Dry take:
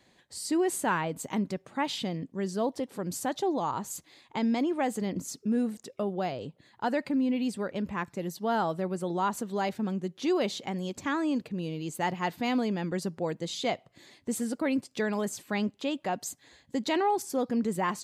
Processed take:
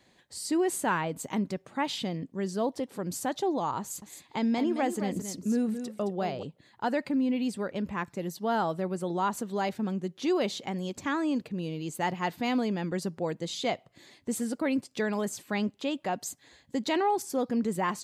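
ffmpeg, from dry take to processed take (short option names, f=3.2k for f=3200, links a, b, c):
-filter_complex "[0:a]asettb=1/sr,asplit=3[a][b][c];[a]atrim=end=3.804[d];[b]atrim=start=3.8:end=6.43,asetpts=PTS-STARTPTS,afade=t=in:d=0.004:c=qsin,afade=t=out:st=2.626:d=0.004:c=qsin,aecho=1:1:218:0.355,atrim=end_sample=115983[e];[c]atrim=start=6.426[f];[d][e]acrossfade=d=0.004:c1=hsin:c2=qsin[g];[g][f]acrossfade=d=0.004:c1=qsin:c2=hsin"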